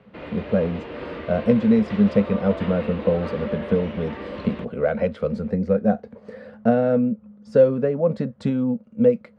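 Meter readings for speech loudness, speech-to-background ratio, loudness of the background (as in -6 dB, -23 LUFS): -22.5 LUFS, 12.0 dB, -34.5 LUFS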